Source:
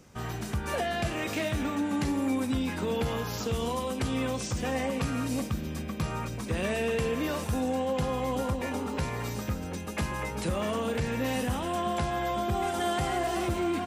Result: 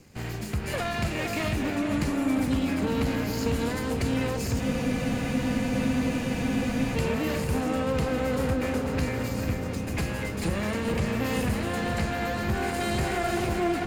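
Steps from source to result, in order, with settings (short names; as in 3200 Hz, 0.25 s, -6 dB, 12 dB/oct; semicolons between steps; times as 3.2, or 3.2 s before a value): minimum comb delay 0.44 ms; darkening echo 0.45 s, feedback 68%, low-pass 2100 Hz, level -5 dB; spectral freeze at 4.63, 2.33 s; gain +2 dB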